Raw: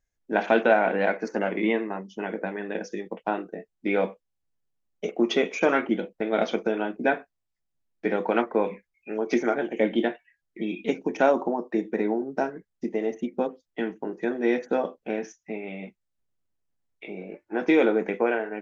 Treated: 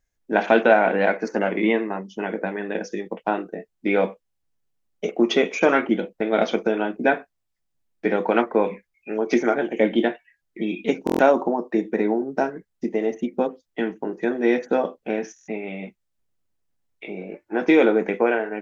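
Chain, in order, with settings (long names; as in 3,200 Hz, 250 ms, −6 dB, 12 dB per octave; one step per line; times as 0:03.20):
buffer that repeats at 0:11.05/0:15.34, samples 1,024, times 5
level +4 dB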